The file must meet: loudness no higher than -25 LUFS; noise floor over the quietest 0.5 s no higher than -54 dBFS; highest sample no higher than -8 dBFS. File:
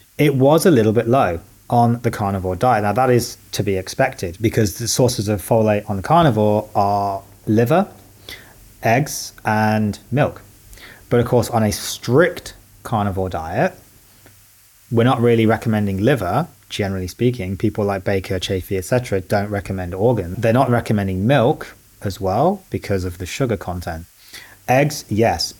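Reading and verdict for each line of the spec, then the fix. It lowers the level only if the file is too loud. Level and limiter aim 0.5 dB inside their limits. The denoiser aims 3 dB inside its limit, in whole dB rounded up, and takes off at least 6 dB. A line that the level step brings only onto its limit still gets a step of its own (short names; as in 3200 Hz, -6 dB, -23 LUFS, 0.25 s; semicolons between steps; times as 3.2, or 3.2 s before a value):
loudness -18.5 LUFS: fail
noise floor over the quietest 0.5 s -50 dBFS: fail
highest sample -3.5 dBFS: fail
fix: gain -7 dB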